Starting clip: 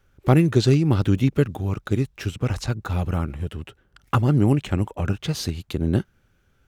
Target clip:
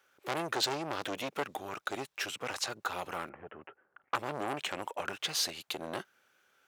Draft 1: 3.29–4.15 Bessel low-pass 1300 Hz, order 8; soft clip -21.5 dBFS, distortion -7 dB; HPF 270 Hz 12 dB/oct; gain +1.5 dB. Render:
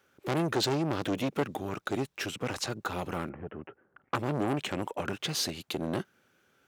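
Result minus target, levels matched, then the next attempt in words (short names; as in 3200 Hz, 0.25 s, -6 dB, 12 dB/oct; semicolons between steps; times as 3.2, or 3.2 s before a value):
250 Hz band +7.5 dB
3.29–4.15 Bessel low-pass 1300 Hz, order 8; soft clip -21.5 dBFS, distortion -7 dB; HPF 620 Hz 12 dB/oct; gain +1.5 dB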